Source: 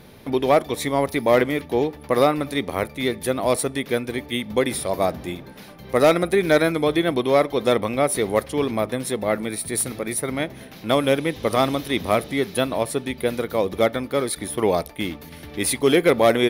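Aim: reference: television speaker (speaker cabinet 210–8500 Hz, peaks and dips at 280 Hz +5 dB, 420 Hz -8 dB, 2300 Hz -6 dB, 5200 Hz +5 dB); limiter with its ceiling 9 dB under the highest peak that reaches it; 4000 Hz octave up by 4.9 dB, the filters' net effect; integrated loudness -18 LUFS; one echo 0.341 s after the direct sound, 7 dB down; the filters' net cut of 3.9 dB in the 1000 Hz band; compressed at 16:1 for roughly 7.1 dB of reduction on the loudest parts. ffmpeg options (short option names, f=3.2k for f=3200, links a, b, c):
-af "equalizer=f=1k:t=o:g=-5.5,equalizer=f=4k:t=o:g=6,acompressor=threshold=-19dB:ratio=16,alimiter=limit=-16.5dB:level=0:latency=1,highpass=f=210:w=0.5412,highpass=f=210:w=1.3066,equalizer=f=280:t=q:w=4:g=5,equalizer=f=420:t=q:w=4:g=-8,equalizer=f=2.3k:t=q:w=4:g=-6,equalizer=f=5.2k:t=q:w=4:g=5,lowpass=f=8.5k:w=0.5412,lowpass=f=8.5k:w=1.3066,aecho=1:1:341:0.447,volume=11dB"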